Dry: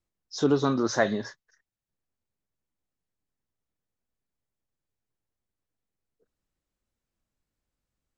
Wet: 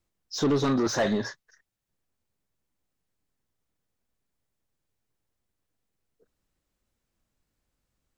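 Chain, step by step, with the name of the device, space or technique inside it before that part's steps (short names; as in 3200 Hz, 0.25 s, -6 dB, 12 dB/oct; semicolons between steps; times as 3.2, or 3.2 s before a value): saturation between pre-emphasis and de-emphasis (high shelf 3400 Hz +11.5 dB; soft clip -24.5 dBFS, distortion -7 dB; high shelf 3400 Hz -11.5 dB); gain +5.5 dB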